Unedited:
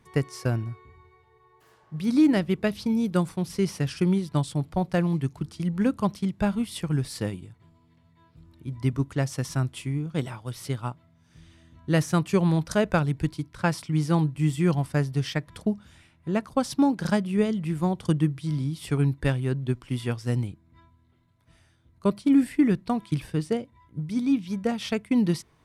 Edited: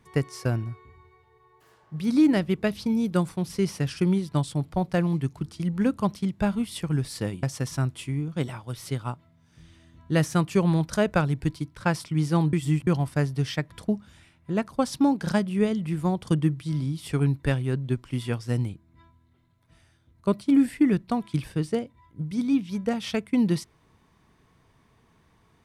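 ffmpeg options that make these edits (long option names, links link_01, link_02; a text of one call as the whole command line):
ffmpeg -i in.wav -filter_complex "[0:a]asplit=4[link_01][link_02][link_03][link_04];[link_01]atrim=end=7.432[link_05];[link_02]atrim=start=9.208:end=14.312[link_06];[link_03]atrim=start=14.308:end=14.652,asetpts=PTS-STARTPTS,areverse[link_07];[link_04]atrim=start=14.648[link_08];[link_05][link_06]acrossfade=duration=0.004:curve1=hsin:curve2=hsin[link_09];[link_09][link_07]acrossfade=duration=0.004:curve1=hsin:curve2=hsin[link_10];[link_10][link_08]acrossfade=duration=0.004:curve1=hsin:curve2=hsin" out.wav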